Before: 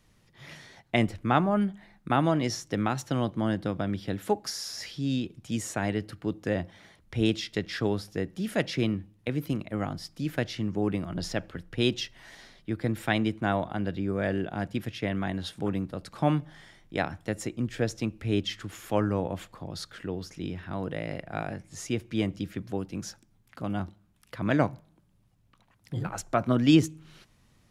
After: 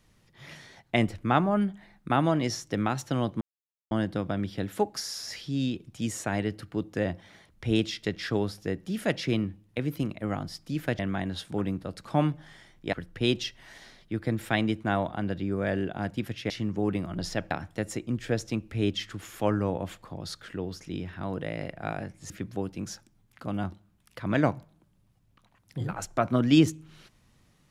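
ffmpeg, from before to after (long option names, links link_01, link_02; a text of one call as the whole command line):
ffmpeg -i in.wav -filter_complex "[0:a]asplit=7[link_01][link_02][link_03][link_04][link_05][link_06][link_07];[link_01]atrim=end=3.41,asetpts=PTS-STARTPTS,afade=type=out:start_time=3.406:duration=0.004:curve=hsin,apad=pad_dur=0.5[link_08];[link_02]atrim=start=3.41:end=10.492,asetpts=PTS-STARTPTS,afade=type=in:duration=0.004:curve=hsin[link_09];[link_03]atrim=start=15.068:end=17.012[link_10];[link_04]atrim=start=11.498:end=15.072[link_11];[link_05]atrim=start=10.488:end=11.502[link_12];[link_06]atrim=start=17.008:end=21.802[link_13];[link_07]atrim=start=22.458[link_14];[link_08][link_09]concat=n=2:v=0:a=1[link_15];[link_15][link_10]acrossfade=duration=0.004:curve1=hsin:curve2=hsin[link_16];[link_16][link_11]acrossfade=duration=0.004:curve1=hsin:curve2=hsin[link_17];[link_17][link_12]acrossfade=duration=0.004:curve1=hsin:curve2=hsin[link_18];[link_18][link_13]acrossfade=duration=0.004:curve1=hsin:curve2=hsin[link_19];[link_19][link_14]acrossfade=duration=0.004:curve1=hsin:curve2=hsin" out.wav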